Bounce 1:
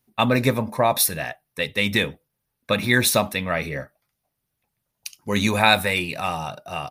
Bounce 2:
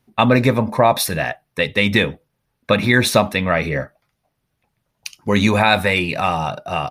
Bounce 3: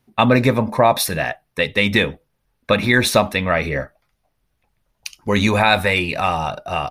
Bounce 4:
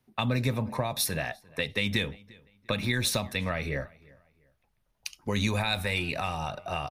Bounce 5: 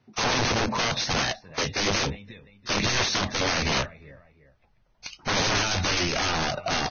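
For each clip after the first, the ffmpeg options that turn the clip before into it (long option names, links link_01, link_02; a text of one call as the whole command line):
ffmpeg -i in.wav -filter_complex "[0:a]aemphasis=mode=reproduction:type=50kf,asplit=2[link_01][link_02];[link_02]acompressor=threshold=-26dB:ratio=6,volume=-2dB[link_03];[link_01][link_03]amix=inputs=2:normalize=0,alimiter=level_in=5dB:limit=-1dB:release=50:level=0:latency=1,volume=-1dB" out.wav
ffmpeg -i in.wav -af "asubboost=boost=5.5:cutoff=54" out.wav
ffmpeg -i in.wav -filter_complex "[0:a]acrossover=split=160|3200[link_01][link_02][link_03];[link_02]acompressor=threshold=-23dB:ratio=6[link_04];[link_01][link_04][link_03]amix=inputs=3:normalize=0,asplit=2[link_05][link_06];[link_06]adelay=348,lowpass=frequency=4000:poles=1,volume=-24dB,asplit=2[link_07][link_08];[link_08]adelay=348,lowpass=frequency=4000:poles=1,volume=0.31[link_09];[link_05][link_07][link_09]amix=inputs=3:normalize=0,volume=-6.5dB" out.wav
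ffmpeg -i in.wav -af "aemphasis=mode=reproduction:type=50kf,aeval=exprs='(mod(23.7*val(0)+1,2)-1)/23.7':channel_layout=same,volume=8.5dB" -ar 16000 -c:a libvorbis -b:a 16k out.ogg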